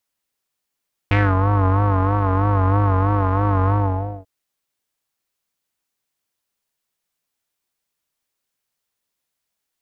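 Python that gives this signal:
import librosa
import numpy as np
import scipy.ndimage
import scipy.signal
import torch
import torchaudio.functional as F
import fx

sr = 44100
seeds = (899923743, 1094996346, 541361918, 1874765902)

y = fx.sub_patch_vibrato(sr, seeds[0], note=43, wave='square', wave2='saw', interval_st=0, detune_cents=16, level2_db=-9.0, sub_db=-15.0, noise_db=-30.0, kind='lowpass', cutoff_hz=630.0, q=3.6, env_oct=2.0, env_decay_s=0.23, env_sustain_pct=40, attack_ms=1.3, decay_s=0.24, sustain_db=-4.0, release_s=0.55, note_s=2.59, lfo_hz=3.1, vibrato_cents=82)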